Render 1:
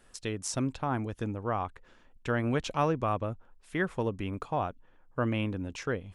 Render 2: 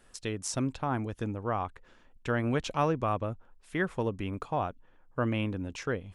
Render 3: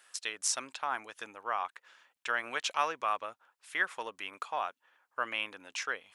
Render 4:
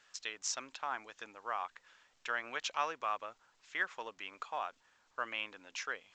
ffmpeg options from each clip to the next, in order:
-af anull
-af "highpass=1.2k,volume=5dB"
-af "volume=-4.5dB" -ar 16000 -c:a pcm_alaw

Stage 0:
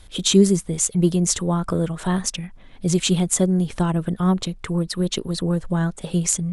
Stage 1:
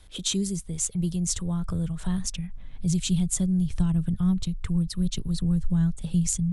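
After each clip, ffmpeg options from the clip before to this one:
-filter_complex "[0:a]asubboost=boost=7:cutoff=160,acrossover=split=170|3000[a][b][c];[b]acompressor=threshold=-35dB:ratio=2[d];[a][d][c]amix=inputs=3:normalize=0,volume=-6.5dB"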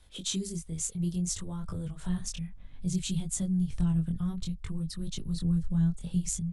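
-af "flanger=delay=19.5:depth=5.1:speed=0.61,volume=-2.5dB"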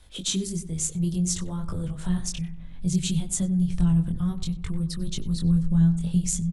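-filter_complex "[0:a]asplit=2[a][b];[b]adelay=95,lowpass=f=1.2k:p=1,volume=-11dB,asplit=2[c][d];[d]adelay=95,lowpass=f=1.2k:p=1,volume=0.52,asplit=2[e][f];[f]adelay=95,lowpass=f=1.2k:p=1,volume=0.52,asplit=2[g][h];[h]adelay=95,lowpass=f=1.2k:p=1,volume=0.52,asplit=2[i][j];[j]adelay=95,lowpass=f=1.2k:p=1,volume=0.52,asplit=2[k][l];[l]adelay=95,lowpass=f=1.2k:p=1,volume=0.52[m];[a][c][e][g][i][k][m]amix=inputs=7:normalize=0,volume=5.5dB"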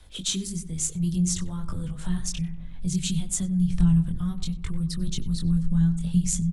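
-filter_complex "[0:a]acrossover=split=300|870[a][b][c];[b]acompressor=threshold=-52dB:ratio=6[d];[a][d][c]amix=inputs=3:normalize=0,aphaser=in_gain=1:out_gain=1:delay=4.1:decay=0.25:speed=0.79:type=sinusoidal"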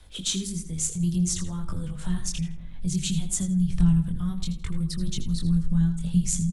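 -af "aecho=1:1:81|162|243:0.224|0.056|0.014"

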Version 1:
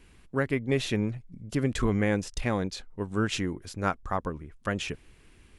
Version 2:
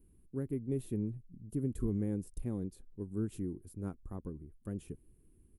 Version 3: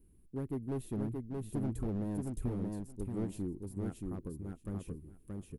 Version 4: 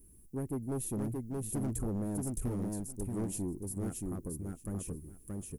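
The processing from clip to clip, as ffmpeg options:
-af "firequalizer=gain_entry='entry(360,0);entry(600,-15);entry(1900,-25);entry(5800,-21);entry(10000,3)':delay=0.05:min_phase=1,volume=-7dB"
-filter_complex "[0:a]volume=31.5dB,asoftclip=hard,volume=-31.5dB,asplit=2[a][b];[b]aecho=0:1:626|1252|1878:0.708|0.106|0.0159[c];[a][c]amix=inputs=2:normalize=0"
-af "aeval=exprs='0.0501*(cos(1*acos(clip(val(0)/0.0501,-1,1)))-cos(1*PI/2))+0.00447*(cos(5*acos(clip(val(0)/0.0501,-1,1)))-cos(5*PI/2))':c=same,aexciter=amount=4.5:drive=3.6:freq=5.4k"

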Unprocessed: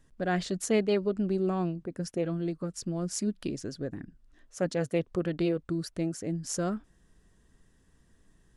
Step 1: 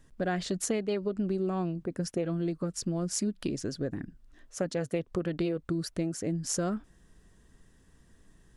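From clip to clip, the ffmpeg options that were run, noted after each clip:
-af "acompressor=threshold=-30dB:ratio=6,volume=3.5dB"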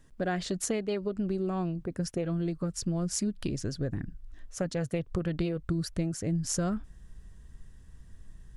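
-af "asubboost=boost=4:cutoff=140"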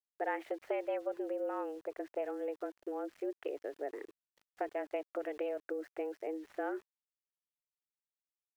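-af "highpass=f=220:t=q:w=0.5412,highpass=f=220:t=q:w=1.307,lowpass=f=2.4k:t=q:w=0.5176,lowpass=f=2.4k:t=q:w=0.7071,lowpass=f=2.4k:t=q:w=1.932,afreqshift=150,crystalizer=i=1:c=0,aeval=exprs='val(0)*gte(abs(val(0)),0.00211)':c=same,volume=-4dB"

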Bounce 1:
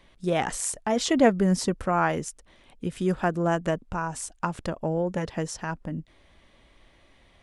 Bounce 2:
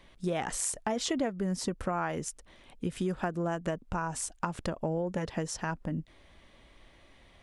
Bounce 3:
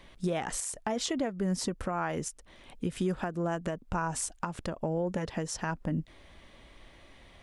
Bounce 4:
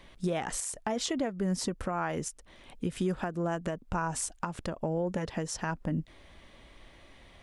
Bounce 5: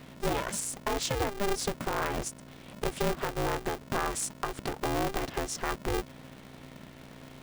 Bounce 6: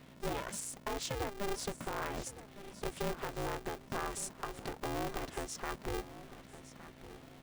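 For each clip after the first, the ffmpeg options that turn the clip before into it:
-af "acompressor=threshold=-28dB:ratio=6"
-af "alimiter=limit=-24dB:level=0:latency=1:release=401,volume=3.5dB"
-af anull
-af "aeval=exprs='val(0)+0.00316*(sin(2*PI*60*n/s)+sin(2*PI*2*60*n/s)/2+sin(2*PI*3*60*n/s)/3+sin(2*PI*4*60*n/s)/4+sin(2*PI*5*60*n/s)/5)':c=same,aeval=exprs='val(0)*sgn(sin(2*PI*200*n/s))':c=same,volume=1dB"
-af "aecho=1:1:1162|2324|3486:0.178|0.0587|0.0194,volume=-7.5dB"

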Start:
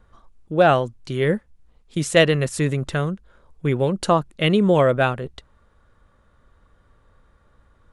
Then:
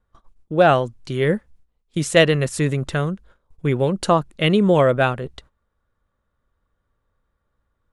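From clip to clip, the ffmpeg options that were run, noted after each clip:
-af "agate=range=-16dB:threshold=-47dB:ratio=16:detection=peak,volume=1dB"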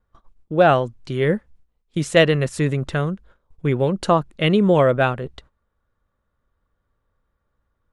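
-af "highshelf=f=6k:g=-8"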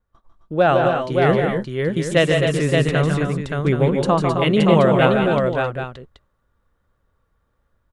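-filter_complex "[0:a]dynaudnorm=f=210:g=3:m=5.5dB,asplit=2[a][b];[b]aecho=0:1:148|168|262|273|572|777:0.501|0.316|0.398|0.299|0.631|0.316[c];[a][c]amix=inputs=2:normalize=0,volume=-3.5dB"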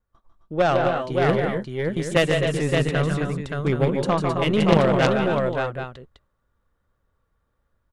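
-af "aeval=exprs='0.891*(cos(1*acos(clip(val(0)/0.891,-1,1)))-cos(1*PI/2))+0.398*(cos(4*acos(clip(val(0)/0.891,-1,1)))-cos(4*PI/2))+0.251*(cos(6*acos(clip(val(0)/0.891,-1,1)))-cos(6*PI/2))':c=same,volume=-4dB"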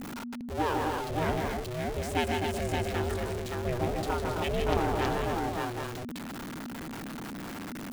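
-af "aeval=exprs='val(0)+0.5*0.0891*sgn(val(0))':c=same,aeval=exprs='val(0)*sin(2*PI*240*n/s)':c=same,volume=-9dB"

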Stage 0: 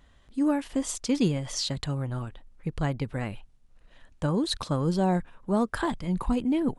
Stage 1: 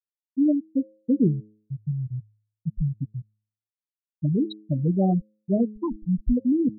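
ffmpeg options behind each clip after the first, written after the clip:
-af "afftfilt=real='re*gte(hypot(re,im),0.316)':imag='im*gte(hypot(re,im),0.316)':win_size=1024:overlap=0.75,equalizer=f=2.6k:w=0.78:g=-13,bandreject=f=106.3:t=h:w=4,bandreject=f=212.6:t=h:w=4,bandreject=f=318.9:t=h:w=4,bandreject=f=425.2:t=h:w=4,bandreject=f=531.5:t=h:w=4,volume=5dB"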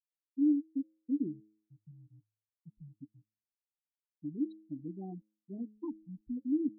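-filter_complex "[0:a]asplit=3[a][b][c];[a]bandpass=f=300:t=q:w=8,volume=0dB[d];[b]bandpass=f=870:t=q:w=8,volume=-6dB[e];[c]bandpass=f=2.24k:t=q:w=8,volume=-9dB[f];[d][e][f]amix=inputs=3:normalize=0,volume=-5.5dB"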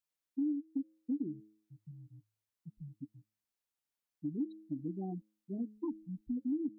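-af "acompressor=threshold=-36dB:ratio=5,volume=3.5dB"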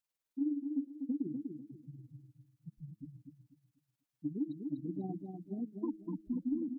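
-filter_complex "[0:a]tremolo=f=19:d=0.58,asplit=2[a][b];[b]aecho=0:1:246|492|738|984:0.531|0.154|0.0446|0.0129[c];[a][c]amix=inputs=2:normalize=0,volume=2dB"

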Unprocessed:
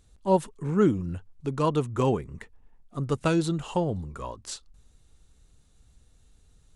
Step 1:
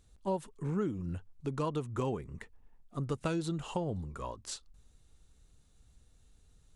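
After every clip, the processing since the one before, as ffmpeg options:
-af "acompressor=threshold=-26dB:ratio=5,volume=-4dB"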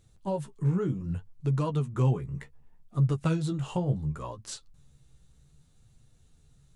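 -af "equalizer=f=140:w=3.5:g=14.5,flanger=delay=9.1:depth=7.6:regen=20:speed=0.67:shape=sinusoidal,volume=5dB"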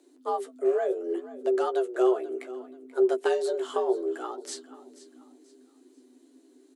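-af "afreqshift=250,aecho=1:1:484|968|1452:0.141|0.0466|0.0154,volume=1.5dB"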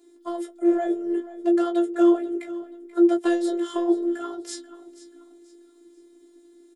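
-filter_complex "[0:a]afftfilt=real='hypot(re,im)*cos(PI*b)':imag='0':win_size=512:overlap=0.75,asplit=2[a][b];[b]adelay=18,volume=-6dB[c];[a][c]amix=inputs=2:normalize=0,volume=5dB"

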